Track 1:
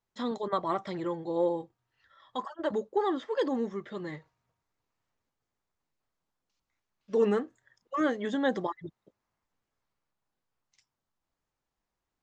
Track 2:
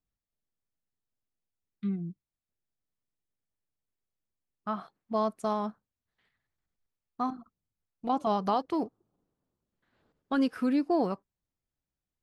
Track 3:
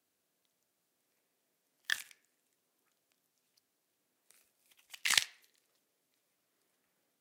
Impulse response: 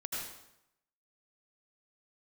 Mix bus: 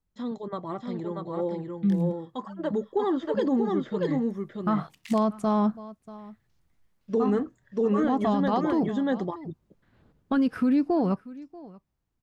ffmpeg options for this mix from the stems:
-filter_complex "[0:a]equalizer=f=150:w=0.47:g=12,volume=0.398,asplit=2[s0][s1];[s1]volume=0.631[s2];[1:a]bass=f=250:g=11,treble=f=4000:g=-5,volume=0.841,asplit=2[s3][s4];[s4]volume=0.0794[s5];[2:a]acompressor=threshold=0.0251:ratio=6,volume=0.133[s6];[s2][s5]amix=inputs=2:normalize=0,aecho=0:1:636:1[s7];[s0][s3][s6][s7]amix=inputs=4:normalize=0,dynaudnorm=f=610:g=9:m=2.51,alimiter=limit=0.15:level=0:latency=1:release=69"

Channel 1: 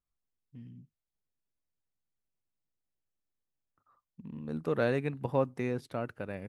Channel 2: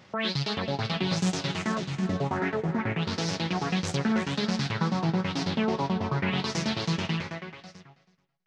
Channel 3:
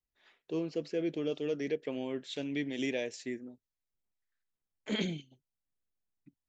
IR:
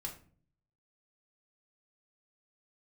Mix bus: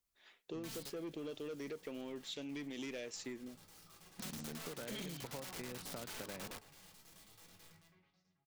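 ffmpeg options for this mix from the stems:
-filter_complex "[0:a]highpass=f=110:w=0.5412,highpass=f=110:w=1.3066,acompressor=threshold=0.0126:ratio=6,volume=0.891,asplit=2[s0][s1];[1:a]aeval=exprs='(mod(18.8*val(0)+1,2)-1)/18.8':c=same,adelay=500,volume=0.133,asplit=2[s2][s3];[s3]volume=0.178[s4];[2:a]asoftclip=type=tanh:threshold=0.0299,volume=0.841[s5];[s1]apad=whole_len=395276[s6];[s2][s6]sidechaingate=range=0.0224:threshold=0.00112:ratio=16:detection=peak[s7];[3:a]atrim=start_sample=2205[s8];[s4][s8]afir=irnorm=-1:irlink=0[s9];[s0][s7][s5][s9]amix=inputs=4:normalize=0,highshelf=f=3700:g=7,acompressor=threshold=0.00794:ratio=6"

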